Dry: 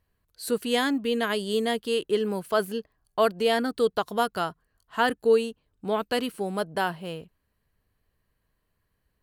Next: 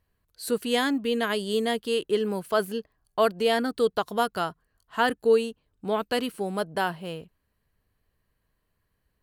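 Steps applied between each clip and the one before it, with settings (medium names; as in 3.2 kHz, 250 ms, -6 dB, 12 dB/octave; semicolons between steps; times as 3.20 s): no audible change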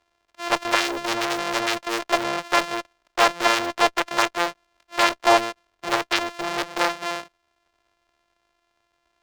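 sorted samples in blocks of 128 samples; Chebyshev shaper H 6 -7 dB, 7 -6 dB, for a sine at -10.5 dBFS; three-band isolator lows -20 dB, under 490 Hz, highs -14 dB, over 7 kHz; trim +3 dB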